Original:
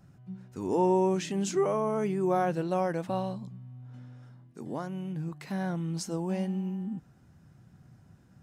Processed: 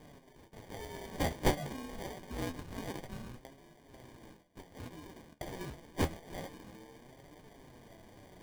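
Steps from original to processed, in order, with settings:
Bessel high-pass filter 2,400 Hz, order 6
decimation without filtering 33×
flanger 0.27 Hz, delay 6.5 ms, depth 8.5 ms, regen +56%
reversed playback
upward compression, threshold −57 dBFS
reversed playback
level +14.5 dB

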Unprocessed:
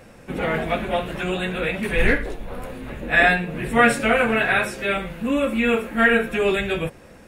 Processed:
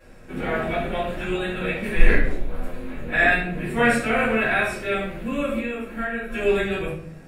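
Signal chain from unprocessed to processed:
hum removal 45.63 Hz, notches 7
0:05.57–0:06.30: downward compressor 4 to 1, threshold −26 dBFS, peak gain reduction 12 dB
rectangular room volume 67 cubic metres, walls mixed, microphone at 2.8 metres
level −14.5 dB

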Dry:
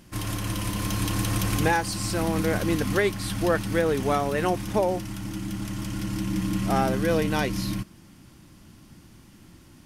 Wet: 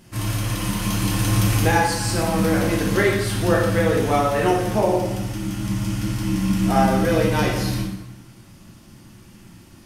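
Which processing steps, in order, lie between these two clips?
dense smooth reverb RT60 1 s, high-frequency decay 0.8×, DRR −3.5 dB

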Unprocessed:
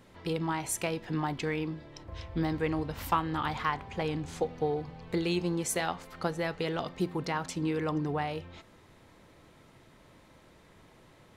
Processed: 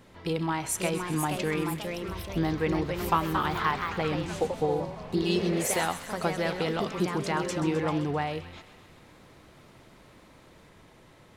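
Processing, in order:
healed spectral selection 0:04.89–0:05.71, 400–2,500 Hz both
delay with pitch and tempo change per echo 568 ms, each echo +2 semitones, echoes 3, each echo −6 dB
on a send: delay with a high-pass on its return 130 ms, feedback 66%, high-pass 1,600 Hz, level −12 dB
on the sum: level +2.5 dB

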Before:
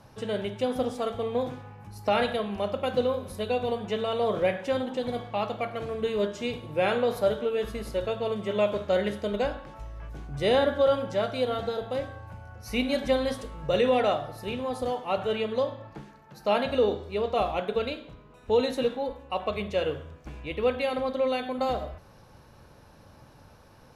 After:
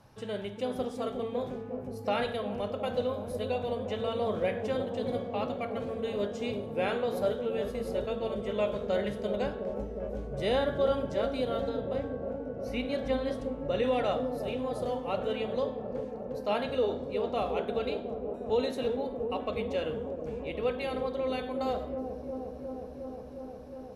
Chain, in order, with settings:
0:11.69–0:13.83: high-shelf EQ 4,800 Hz −10 dB
delay with a low-pass on its return 359 ms, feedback 83%, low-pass 480 Hz, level −4 dB
level −5.5 dB

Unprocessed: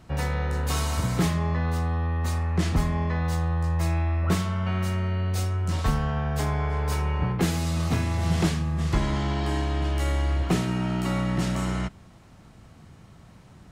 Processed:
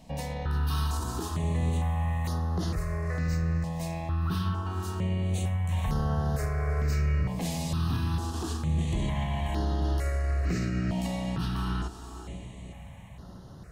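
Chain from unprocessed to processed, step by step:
brickwall limiter −23 dBFS, peak gain reduction 11 dB
on a send: feedback delay with all-pass diffusion 535 ms, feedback 49%, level −10 dB
on the sum: step-sequenced phaser 2.2 Hz 370–7,900 Hz
level +2.5 dB

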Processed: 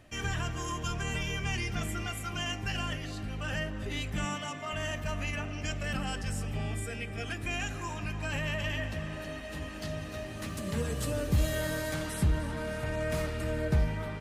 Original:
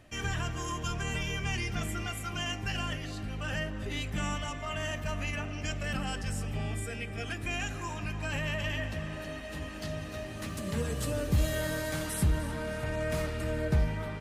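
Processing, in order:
0:04.25–0:04.73: high-pass filter 120 Hz 24 dB per octave
0:11.94–0:12.57: high-shelf EQ 9,300 Hz −9.5 dB

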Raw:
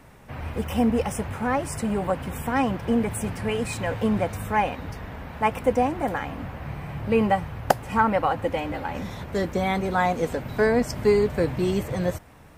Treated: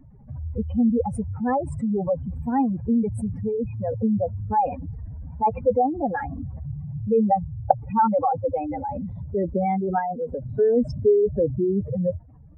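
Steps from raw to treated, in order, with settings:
expanding power law on the bin magnitudes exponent 3.2
0:03.41–0:04.40: Chebyshev low-pass filter 1,200 Hz, order 3
0:09.98–0:10.56: downward compressor 3 to 1, threshold −28 dBFS, peak gain reduction 7 dB
level +2 dB

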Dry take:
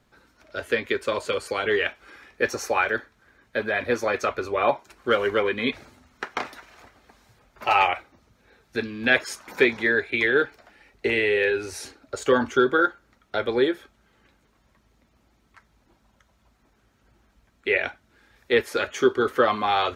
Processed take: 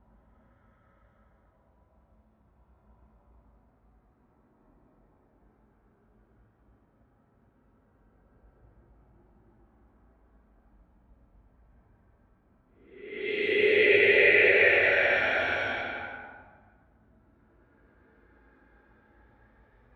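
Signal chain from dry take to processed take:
extreme stretch with random phases 8.8×, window 0.25 s, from 0:16.11
low-pass that shuts in the quiet parts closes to 940 Hz, open at −25.5 dBFS
level +1.5 dB

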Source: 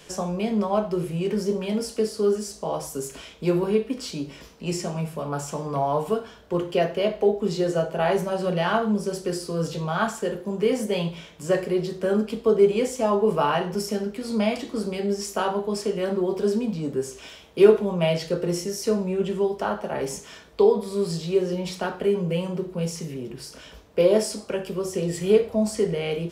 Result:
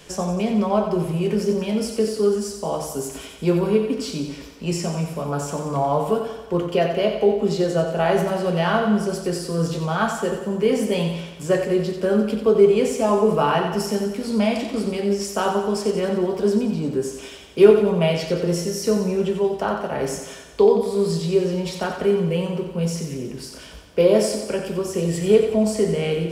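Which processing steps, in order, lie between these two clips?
low-shelf EQ 180 Hz +4 dB
on a send: feedback echo with a high-pass in the loop 90 ms, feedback 59%, high-pass 150 Hz, level −7.5 dB
on the sum: level +2 dB

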